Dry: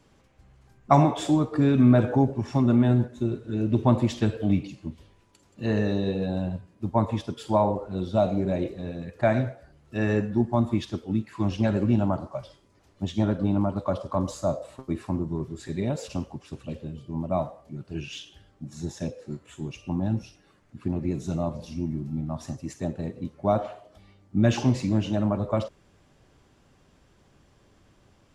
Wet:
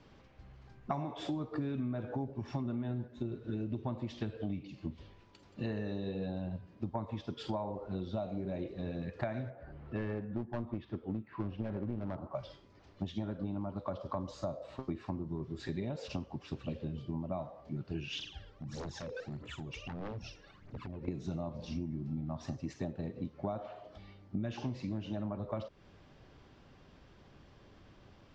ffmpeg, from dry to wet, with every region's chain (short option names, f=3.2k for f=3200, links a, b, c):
-filter_complex "[0:a]asettb=1/sr,asplit=3[a][b][c];[a]atrim=end=9.504[d];[b]atrim=start=9.5:end=12.35,asetpts=PTS-STARTPTS,afade=t=in:d=0.004:c=qsin,afade=t=out:st=2.846:d=0.004:c=qsin,lowpass=1.9k,aeval=exprs='clip(val(0),-1,0.0596)':c=same,acompressor=mode=upward:threshold=-41dB:ratio=2.5:attack=3.2:release=140:knee=2.83:detection=peak[e];[c]atrim=start=12.346[f];[d][e]acrossfade=d=0.004:c1=hsin:c2=qsin[g];[g][f]acrossfade=d=0.004:c1=qsin:c2=hsin,asettb=1/sr,asplit=3[h][i][j];[h]atrim=end=18.194[k];[i]atrim=start=18.19:end=21.08,asetpts=PTS-STARTPTS,afade=t=in:d=0.004:c=qsin,afade=t=out:st=2.886:d=0.004:c=qsin,acompressor=threshold=-38dB:ratio=8:attack=3.2:release=140:knee=1:detection=peak,aphaser=in_gain=1:out_gain=1:delay=2.3:decay=0.68:speed=1.6:type=triangular,aeval=exprs='0.015*(abs(mod(val(0)/0.015+3,4)-2)-1)':c=same[l];[j]atrim=start=21.076[m];[k][l]acrossfade=d=0.004:c1=hsin:c2=qsin[n];[n][m]acrossfade=d=0.004:c1=qsin:c2=hsin,acompressor=threshold=-35dB:ratio=10,lowpass=f=5.2k:w=0.5412,lowpass=f=5.2k:w=1.3066,volume=1dB"